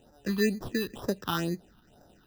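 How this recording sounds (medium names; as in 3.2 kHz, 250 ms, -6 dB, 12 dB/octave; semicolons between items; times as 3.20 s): aliases and images of a low sample rate 2.2 kHz, jitter 0%; phasing stages 6, 2.1 Hz, lowest notch 550–2900 Hz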